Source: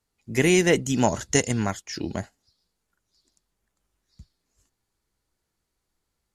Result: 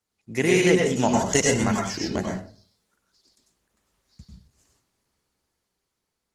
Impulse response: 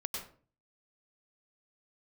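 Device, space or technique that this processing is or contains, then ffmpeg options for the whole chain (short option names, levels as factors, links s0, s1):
far-field microphone of a smart speaker: -filter_complex "[1:a]atrim=start_sample=2205[s0];[0:a][s0]afir=irnorm=-1:irlink=0,highpass=f=130:p=1,dynaudnorm=f=270:g=11:m=2.51" -ar 48000 -c:a libopus -b:a 16k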